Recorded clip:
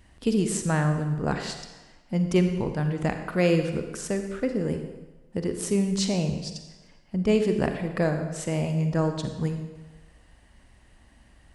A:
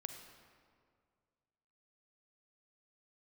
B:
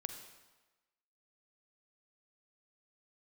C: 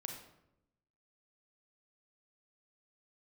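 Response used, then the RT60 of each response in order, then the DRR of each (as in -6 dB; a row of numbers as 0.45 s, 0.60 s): B; 2.1 s, 1.2 s, 0.85 s; 5.5 dB, 6.5 dB, 2.5 dB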